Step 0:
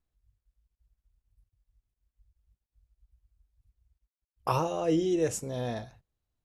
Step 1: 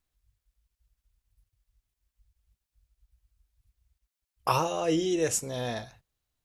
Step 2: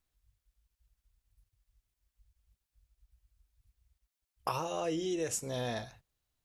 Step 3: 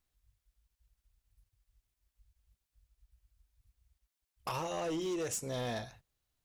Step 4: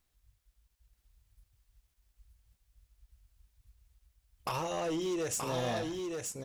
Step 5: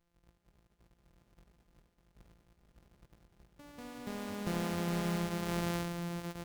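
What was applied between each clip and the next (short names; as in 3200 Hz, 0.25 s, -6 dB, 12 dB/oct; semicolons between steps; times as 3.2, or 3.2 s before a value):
tilt shelf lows -4.5 dB; gain +3 dB
compressor 6:1, threshold -30 dBFS, peak gain reduction 10.5 dB; gain -1 dB
hard clip -32 dBFS, distortion -12 dB
in parallel at -2.5 dB: compressor, threshold -44 dBFS, peak gain reduction 10 dB; on the sum: echo 0.927 s -4 dB
sample sorter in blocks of 256 samples; echoes that change speed 0.312 s, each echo +3 st, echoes 3, each echo -6 dB; gain -1.5 dB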